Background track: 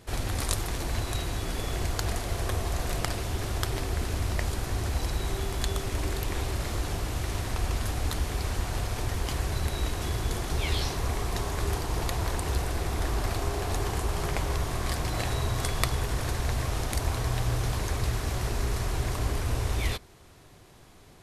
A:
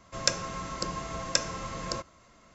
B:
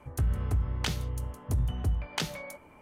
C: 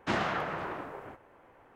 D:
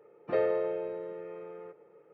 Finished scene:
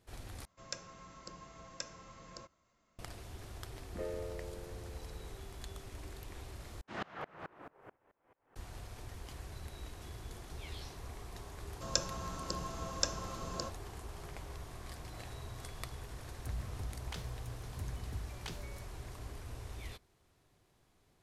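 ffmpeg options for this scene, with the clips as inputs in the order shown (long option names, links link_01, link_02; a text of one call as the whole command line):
ffmpeg -i bed.wav -i cue0.wav -i cue1.wav -i cue2.wav -i cue3.wav -filter_complex "[1:a]asplit=2[link_01][link_02];[0:a]volume=-17.5dB[link_03];[4:a]equalizer=frequency=220:width=1.5:gain=14.5[link_04];[3:a]aeval=exprs='val(0)*pow(10,-28*if(lt(mod(-4.6*n/s,1),2*abs(-4.6)/1000),1-mod(-4.6*n/s,1)/(2*abs(-4.6)/1000),(mod(-4.6*n/s,1)-2*abs(-4.6)/1000)/(1-2*abs(-4.6)/1000))/20)':channel_layout=same[link_05];[link_02]equalizer=frequency=2100:width=3.5:gain=-14.5[link_06];[link_03]asplit=3[link_07][link_08][link_09];[link_07]atrim=end=0.454[link_10];[link_01]atrim=end=2.54,asetpts=PTS-STARTPTS,volume=-17dB[link_11];[link_08]atrim=start=2.986:end=6.814[link_12];[link_05]atrim=end=1.75,asetpts=PTS-STARTPTS,volume=-5dB[link_13];[link_09]atrim=start=8.556[link_14];[link_04]atrim=end=2.13,asetpts=PTS-STARTPTS,volume=-16dB,afade=type=in:duration=0.004:curve=hsin,afade=type=out:start_time=2.126:duration=0.004:curve=hsin,adelay=3660[link_15];[link_06]atrim=end=2.54,asetpts=PTS-STARTPTS,volume=-6dB,afade=type=in:duration=0.004:curve=hsin,afade=type=out:start_time=2.536:duration=0.004:curve=hsin,adelay=11680[link_16];[2:a]atrim=end=2.81,asetpts=PTS-STARTPTS,volume=-14dB,afade=type=in:duration=0.004:curve=hsin,afade=type=out:start_time=2.806:duration=0.004:curve=hsin,adelay=16280[link_17];[link_10][link_11]acrossfade=duration=0.004:curve1=hsin:curve2=hsin[link_18];[link_18][link_12]acrossfade=duration=0.004:curve1=hsin:curve2=hsin[link_19];[link_19][link_13]acrossfade=duration=0.004:curve1=hsin:curve2=hsin[link_20];[link_20][link_14]acrossfade=duration=0.004:curve1=hsin:curve2=hsin[link_21];[link_21][link_15][link_16][link_17]amix=inputs=4:normalize=0" out.wav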